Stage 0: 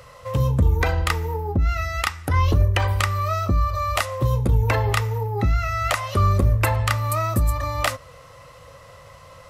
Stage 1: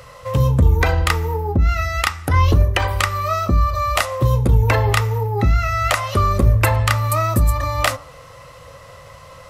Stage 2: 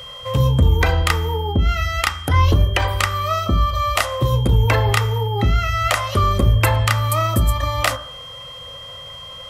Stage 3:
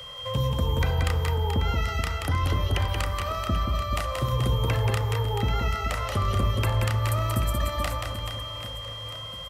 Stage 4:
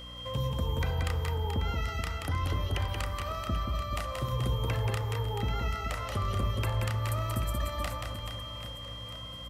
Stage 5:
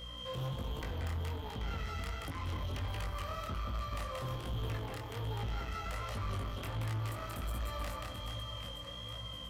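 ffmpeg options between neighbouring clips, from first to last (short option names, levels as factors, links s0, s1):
-af "bandreject=f=97.02:t=h:w=4,bandreject=f=194.04:t=h:w=4,bandreject=f=291.06:t=h:w=4,bandreject=f=388.08:t=h:w=4,bandreject=f=485.1:t=h:w=4,bandreject=f=582.12:t=h:w=4,bandreject=f=679.14:t=h:w=4,bandreject=f=776.16:t=h:w=4,bandreject=f=873.18:t=h:w=4,bandreject=f=970.2:t=h:w=4,bandreject=f=1067.22:t=h:w=4,bandreject=f=1164.24:t=h:w=4,bandreject=f=1261.26:t=h:w=4,bandreject=f=1358.28:t=h:w=4,volume=1.68"
-af "aeval=exprs='val(0)+0.02*sin(2*PI*3200*n/s)':c=same,bandreject=f=59.56:t=h:w=4,bandreject=f=119.12:t=h:w=4,bandreject=f=178.68:t=h:w=4,bandreject=f=238.24:t=h:w=4,bandreject=f=297.8:t=h:w=4,bandreject=f=357.36:t=h:w=4,bandreject=f=416.92:t=h:w=4,bandreject=f=476.48:t=h:w=4,bandreject=f=536.04:t=h:w=4,bandreject=f=595.6:t=h:w=4,bandreject=f=655.16:t=h:w=4,bandreject=f=714.72:t=h:w=4,bandreject=f=774.28:t=h:w=4,bandreject=f=833.84:t=h:w=4,bandreject=f=893.4:t=h:w=4,bandreject=f=952.96:t=h:w=4,bandreject=f=1012.52:t=h:w=4,bandreject=f=1072.08:t=h:w=4,bandreject=f=1131.64:t=h:w=4,bandreject=f=1191.2:t=h:w=4,bandreject=f=1250.76:t=h:w=4,bandreject=f=1310.32:t=h:w=4,bandreject=f=1369.88:t=h:w=4,bandreject=f=1429.44:t=h:w=4,bandreject=f=1489:t=h:w=4,bandreject=f=1548.56:t=h:w=4,bandreject=f=1608.12:t=h:w=4,bandreject=f=1667.68:t=h:w=4,bandreject=f=1727.24:t=h:w=4,bandreject=f=1786.8:t=h:w=4,bandreject=f=1846.36:t=h:w=4"
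-filter_complex "[0:a]acrossover=split=230|480[s0][s1][s2];[s0]acompressor=threshold=0.112:ratio=4[s3];[s1]acompressor=threshold=0.0178:ratio=4[s4];[s2]acompressor=threshold=0.0447:ratio=4[s5];[s3][s4][s5]amix=inputs=3:normalize=0,aecho=1:1:180|432|784.8|1279|1970:0.631|0.398|0.251|0.158|0.1,volume=0.562"
-af "aeval=exprs='val(0)+0.01*(sin(2*PI*60*n/s)+sin(2*PI*2*60*n/s)/2+sin(2*PI*3*60*n/s)/3+sin(2*PI*4*60*n/s)/4+sin(2*PI*5*60*n/s)/5)':c=same,volume=0.501"
-af "asoftclip=type=tanh:threshold=0.02,flanger=delay=18:depth=5.6:speed=1.3,volume=1.19"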